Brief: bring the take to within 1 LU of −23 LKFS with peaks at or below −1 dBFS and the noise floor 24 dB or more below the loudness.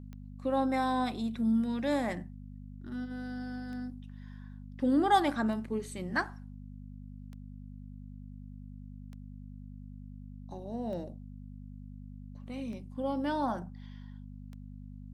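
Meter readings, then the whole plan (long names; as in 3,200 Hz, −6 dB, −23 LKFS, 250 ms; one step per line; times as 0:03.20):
number of clicks 9; mains hum 50 Hz; hum harmonics up to 250 Hz; level of the hum −43 dBFS; integrated loudness −32.5 LKFS; sample peak −13.5 dBFS; target loudness −23.0 LKFS
→ click removal
hum removal 50 Hz, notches 5
level +9.5 dB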